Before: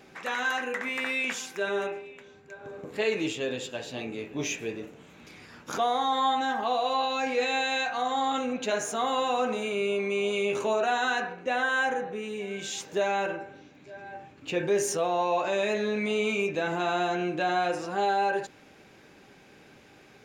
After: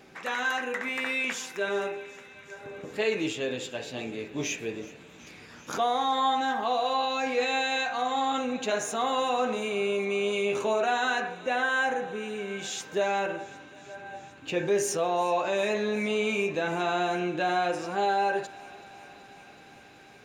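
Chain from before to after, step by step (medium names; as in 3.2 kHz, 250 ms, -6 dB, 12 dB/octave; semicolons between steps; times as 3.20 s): thinning echo 377 ms, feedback 83%, high-pass 500 Hz, level -20 dB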